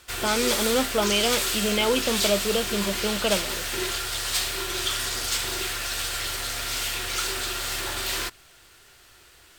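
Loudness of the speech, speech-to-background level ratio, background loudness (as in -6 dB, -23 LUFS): -25.5 LUFS, 0.5 dB, -26.0 LUFS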